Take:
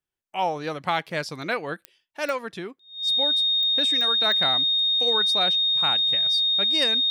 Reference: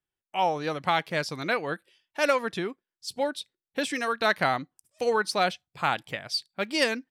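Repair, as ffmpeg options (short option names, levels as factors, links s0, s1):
-af "adeclick=t=4,bandreject=f=3700:w=30,asetnsamples=n=441:p=0,asendcmd='2.04 volume volume 3.5dB',volume=1"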